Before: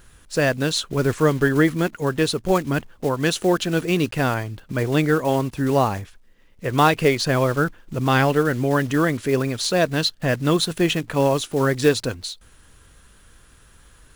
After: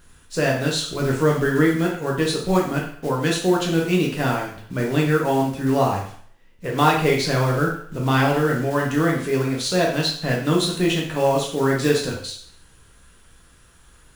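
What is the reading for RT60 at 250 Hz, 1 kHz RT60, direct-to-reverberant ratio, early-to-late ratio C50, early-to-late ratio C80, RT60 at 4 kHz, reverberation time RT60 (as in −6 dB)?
0.55 s, 0.55 s, −2.0 dB, 5.0 dB, 9.0 dB, 0.55 s, 0.55 s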